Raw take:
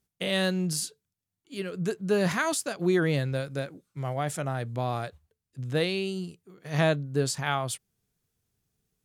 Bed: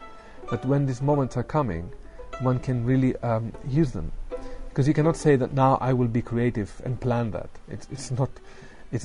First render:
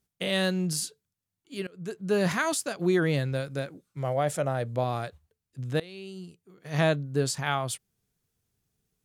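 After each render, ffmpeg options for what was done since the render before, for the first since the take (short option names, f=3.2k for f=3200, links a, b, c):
-filter_complex "[0:a]asettb=1/sr,asplit=3[a][b][c];[a]atrim=end=4.024[d];[b]atrim=start=4.02:end=4.84,asetpts=PTS-STARTPTS,afade=t=in:d=0.004:c=qsin,afade=t=out:st=0.816:d=0.004:c=qsin,equalizer=f=550:t=o:w=0.56:g=8.5[e];[c]atrim=start=4.836[f];[d][e]acrossfade=d=0.004:c1=hsin:c2=qsin[g];[g][f]acrossfade=d=0.004:c1=qsin:c2=hsin,asplit=3[h][i][j];[h]atrim=end=1.67,asetpts=PTS-STARTPTS,afade=t=out:st=1.666:d=0.004:c=hsin:silence=0.0794328[k];[i]atrim=start=1.67:end=5.8,asetpts=PTS-STARTPTS,afade=t=in:d=0.5:silence=0.0794328,afade=t=out:st=4.126:d=0.004:c=hsin:silence=0.0841395[l];[j]atrim=start=5.8,asetpts=PTS-STARTPTS,afade=t=in:d=1.05:silence=0.0841395[m];[k][l][m]concat=n=3:v=0:a=1"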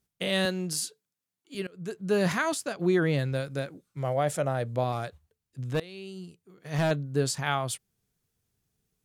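-filter_complex "[0:a]asettb=1/sr,asplit=3[a][b][c];[a]atrim=end=0.454[d];[b]atrim=start=0.45:end=1.55,asetpts=PTS-STARTPTS,afade=t=in:d=0.004:c=qsin,afade=t=out:st=1.096:d=0.004:c=qsin,highpass=220[e];[c]atrim=start=1.546[f];[d][e]acrossfade=d=0.004:c1=hsin:c2=qsin[g];[g][f]acrossfade=d=0.004:c1=qsin:c2=hsin,asettb=1/sr,asplit=3[h][i][j];[h]atrim=end=2.384[k];[i]atrim=start=2.38:end=3.19,asetpts=PTS-STARTPTS,afade=t=in:d=0.004:c=qsin,afade=t=out:st=0.806:d=0.004:c=qsin,highshelf=f=4.5k:g=-5.5[l];[j]atrim=start=3.186[m];[k][l]acrossfade=d=0.004:c1=hsin:c2=qsin[n];[n][m]acrossfade=d=0.004:c1=qsin:c2=hsin,asettb=1/sr,asplit=3[o][p][q];[o]atrim=end=4.924[r];[p]atrim=start=4.92:end=6.91,asetpts=PTS-STARTPTS,afade=t=in:d=0.004:c=qsin,afade=t=out:st=1.986:d=0.004:c=qsin,volume=22dB,asoftclip=hard,volume=-22dB[s];[q]atrim=start=6.906[t];[r][s]acrossfade=d=0.004:c1=hsin:c2=qsin[u];[u][t]acrossfade=d=0.004:c1=qsin:c2=hsin"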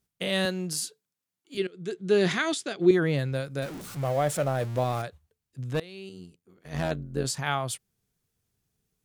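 -filter_complex "[0:a]asettb=1/sr,asplit=3[a][b][c];[a]atrim=end=1.574[d];[b]atrim=start=1.57:end=2.91,asetpts=PTS-STARTPTS,afade=t=in:d=0.004:c=qsin,afade=t=out:st=1.336:d=0.004:c=qsin,highpass=130,equalizer=f=370:t=q:w=4:g=9,equalizer=f=560:t=q:w=4:g=-4,equalizer=f=1k:t=q:w=4:g=-6,equalizer=f=2.1k:t=q:w=4:g=4,equalizer=f=3.5k:t=q:w=4:g=10,lowpass=f=9.3k:w=0.5412,lowpass=f=9.3k:w=1.3066[e];[c]atrim=start=2.906[f];[d][e]acrossfade=d=0.004:c1=hsin:c2=qsin[g];[g][f]acrossfade=d=0.004:c1=qsin:c2=hsin,asettb=1/sr,asplit=3[h][i][j];[h]atrim=end=3.624[k];[i]atrim=start=3.62:end=5.02,asetpts=PTS-STARTPTS,afade=t=in:d=0.004:c=qsin,afade=t=out:st=1.396:d=0.004:c=qsin,aeval=exprs='val(0)+0.5*0.0168*sgn(val(0))':c=same[l];[j]atrim=start=5.016[m];[k][l]acrossfade=d=0.004:c1=hsin:c2=qsin[n];[n][m]acrossfade=d=0.004:c1=qsin:c2=hsin,asettb=1/sr,asplit=3[o][p][q];[o]atrim=end=6.094[r];[p]atrim=start=6.09:end=7.25,asetpts=PTS-STARTPTS,afade=t=in:d=0.004:c=qsin,afade=t=out:st=1.156:d=0.004:c=qsin,tremolo=f=87:d=0.75[s];[q]atrim=start=7.246[t];[r][s]acrossfade=d=0.004:c1=hsin:c2=qsin[u];[u][t]acrossfade=d=0.004:c1=qsin:c2=hsin"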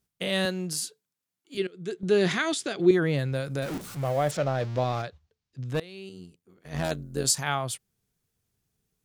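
-filter_complex "[0:a]asettb=1/sr,asplit=3[a][b][c];[a]atrim=end=2.034[d];[b]atrim=start=2.03:end=3.78,asetpts=PTS-STARTPTS,afade=t=in:d=0.004:c=qsin,afade=t=out:st=1.746:d=0.004:c=qsin,acompressor=mode=upward:threshold=-24dB:ratio=2.5:attack=3.2:release=140:knee=2.83:detection=peak[e];[c]atrim=start=3.776[f];[d][e]acrossfade=d=0.004:c1=hsin:c2=qsin[g];[g][f]acrossfade=d=0.004:c1=qsin:c2=hsin,asettb=1/sr,asplit=3[h][i][j];[h]atrim=end=4.314[k];[i]atrim=start=4.31:end=5.69,asetpts=PTS-STARTPTS,afade=t=in:d=0.004:c=qsin,afade=t=out:st=1.376:d=0.004:c=qsin,highshelf=f=7.5k:t=q:w=1.5:g=-13[l];[j]atrim=start=5.686[m];[k][l]acrossfade=d=0.004:c1=hsin:c2=qsin[n];[n][m]acrossfade=d=0.004:c1=qsin:c2=hsin,asettb=1/sr,asplit=3[o][p][q];[o]atrim=end=6.844[r];[p]atrim=start=6.84:end=7.44,asetpts=PTS-STARTPTS,afade=t=in:d=0.004:c=qsin,afade=t=out:st=0.596:d=0.004:c=qsin,bass=f=250:g=-2,treble=f=4k:g=10[s];[q]atrim=start=7.436[t];[r][s]acrossfade=d=0.004:c1=hsin:c2=qsin[u];[u][t]acrossfade=d=0.004:c1=qsin:c2=hsin"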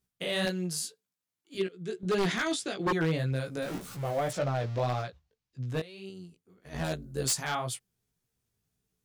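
-af "flanger=delay=15.5:depth=3.2:speed=1.8,aeval=exprs='0.0891*(abs(mod(val(0)/0.0891+3,4)-2)-1)':c=same"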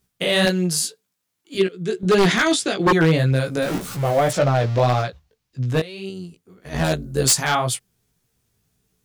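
-af "volume=12dB"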